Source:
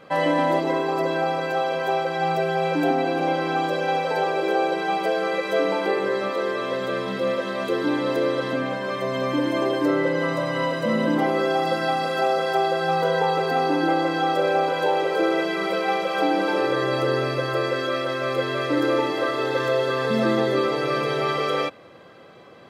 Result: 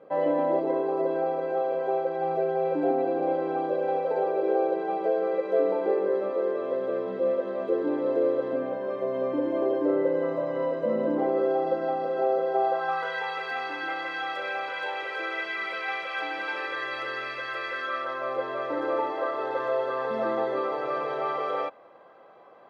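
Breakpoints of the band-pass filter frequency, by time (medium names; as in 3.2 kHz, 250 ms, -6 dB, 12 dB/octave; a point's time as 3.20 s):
band-pass filter, Q 1.6
12.51 s 470 Hz
13.13 s 2 kHz
17.67 s 2 kHz
18.32 s 820 Hz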